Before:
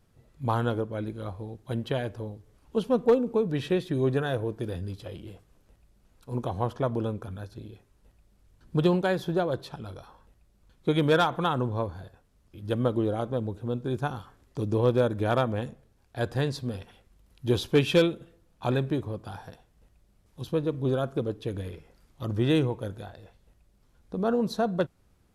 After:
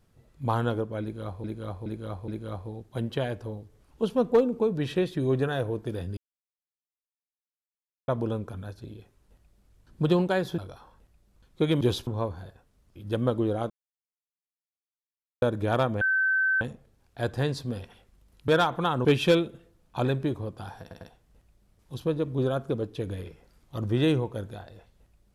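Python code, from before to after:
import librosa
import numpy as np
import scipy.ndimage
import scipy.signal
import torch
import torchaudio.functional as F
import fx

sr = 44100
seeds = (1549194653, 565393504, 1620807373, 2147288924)

y = fx.edit(x, sr, fx.repeat(start_s=1.02, length_s=0.42, count=4),
    fx.silence(start_s=4.91, length_s=1.91),
    fx.cut(start_s=9.32, length_s=0.53),
    fx.swap(start_s=11.08, length_s=0.57, other_s=17.46, other_length_s=0.26),
    fx.silence(start_s=13.28, length_s=1.72),
    fx.insert_tone(at_s=15.59, length_s=0.6, hz=1540.0, db=-21.0),
    fx.stutter(start_s=19.48, slice_s=0.1, count=3), tone=tone)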